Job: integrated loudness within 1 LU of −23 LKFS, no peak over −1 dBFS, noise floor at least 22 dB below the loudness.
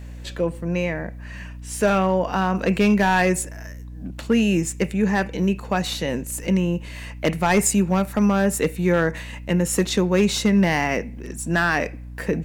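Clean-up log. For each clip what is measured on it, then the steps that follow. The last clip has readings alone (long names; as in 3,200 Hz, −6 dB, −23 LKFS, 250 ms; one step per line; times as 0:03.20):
share of clipped samples 0.5%; peaks flattened at −10.5 dBFS; mains hum 60 Hz; hum harmonics up to 300 Hz; level of the hum −34 dBFS; integrated loudness −21.5 LKFS; sample peak −10.5 dBFS; target loudness −23.0 LKFS
→ clipped peaks rebuilt −10.5 dBFS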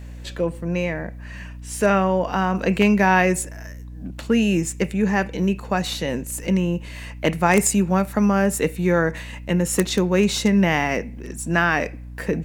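share of clipped samples 0.0%; mains hum 60 Hz; hum harmonics up to 300 Hz; level of the hum −34 dBFS
→ hum removal 60 Hz, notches 5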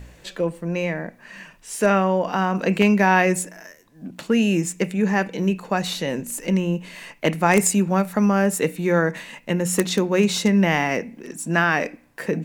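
mains hum none found; integrated loudness −21.0 LKFS; sample peak −1.5 dBFS; target loudness −23.0 LKFS
→ level −2 dB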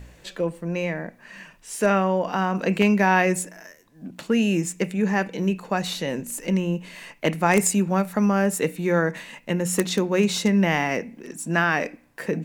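integrated loudness −23.0 LKFS; sample peak −3.5 dBFS; background noise floor −54 dBFS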